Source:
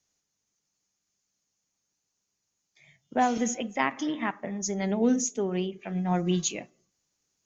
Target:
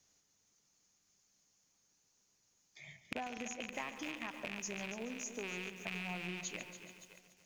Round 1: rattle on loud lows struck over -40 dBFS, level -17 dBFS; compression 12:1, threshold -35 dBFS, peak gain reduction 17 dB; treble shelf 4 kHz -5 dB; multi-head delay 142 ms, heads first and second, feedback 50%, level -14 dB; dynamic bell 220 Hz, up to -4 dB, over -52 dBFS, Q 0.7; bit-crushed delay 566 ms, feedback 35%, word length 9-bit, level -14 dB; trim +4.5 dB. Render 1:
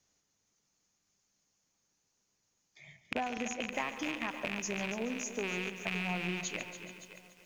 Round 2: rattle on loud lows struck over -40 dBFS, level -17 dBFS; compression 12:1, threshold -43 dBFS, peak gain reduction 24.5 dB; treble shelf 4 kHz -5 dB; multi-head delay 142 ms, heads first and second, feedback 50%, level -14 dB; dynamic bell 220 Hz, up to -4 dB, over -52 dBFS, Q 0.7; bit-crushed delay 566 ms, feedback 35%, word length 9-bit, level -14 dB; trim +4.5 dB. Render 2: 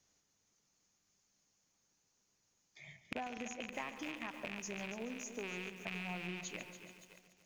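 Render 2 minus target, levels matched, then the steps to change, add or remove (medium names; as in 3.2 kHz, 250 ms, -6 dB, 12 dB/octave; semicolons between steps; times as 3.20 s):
8 kHz band -2.5 dB
remove: treble shelf 4 kHz -5 dB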